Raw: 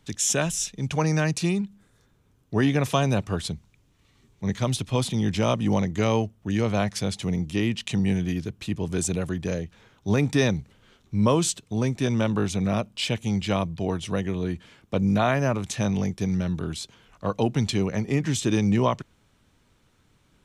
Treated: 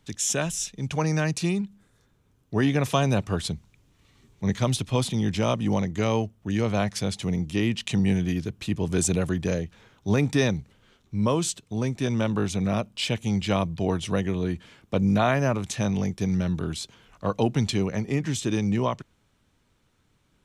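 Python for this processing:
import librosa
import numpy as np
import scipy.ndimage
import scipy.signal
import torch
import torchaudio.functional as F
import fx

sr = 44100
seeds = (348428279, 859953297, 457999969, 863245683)

y = fx.rider(x, sr, range_db=10, speed_s=2.0)
y = F.gain(torch.from_numpy(y), -1.0).numpy()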